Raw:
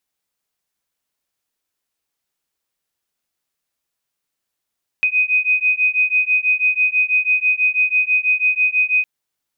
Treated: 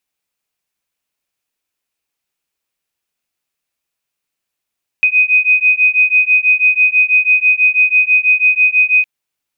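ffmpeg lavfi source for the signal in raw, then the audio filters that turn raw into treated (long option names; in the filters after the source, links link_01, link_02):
-f lavfi -i "aevalsrc='0.141*(sin(2*PI*2500*t)+sin(2*PI*2506.1*t))':duration=4.01:sample_rate=44100"
-af "equalizer=frequency=2500:width_type=o:width=0.38:gain=5.5"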